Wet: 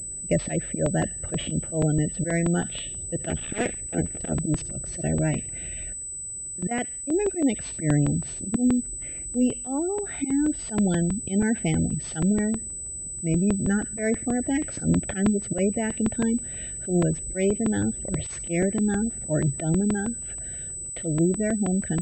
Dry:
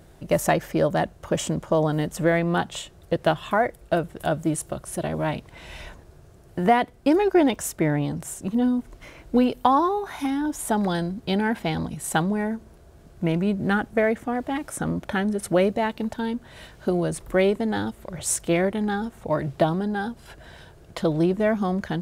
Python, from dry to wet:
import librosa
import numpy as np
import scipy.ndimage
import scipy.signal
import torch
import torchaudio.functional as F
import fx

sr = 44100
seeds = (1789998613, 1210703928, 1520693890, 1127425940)

y = fx.cycle_switch(x, sr, every=2, mode='muted', at=(3.29, 4.36))
y = fx.auto_swell(y, sr, attack_ms=103.0)
y = fx.rider(y, sr, range_db=4, speed_s=0.5)
y = fx.low_shelf(y, sr, hz=290.0, db=5.5)
y = fx.fixed_phaser(y, sr, hz=2500.0, stages=4)
y = fx.echo_wet_highpass(y, sr, ms=70, feedback_pct=35, hz=2100.0, wet_db=-11.5)
y = fx.spec_gate(y, sr, threshold_db=-30, keep='strong')
y = fx.level_steps(y, sr, step_db=13, at=(5.66, 7.08))
y = fx.buffer_crackle(y, sr, first_s=0.86, period_s=0.16, block=128, kind='repeat')
y = fx.pwm(y, sr, carrier_hz=8000.0)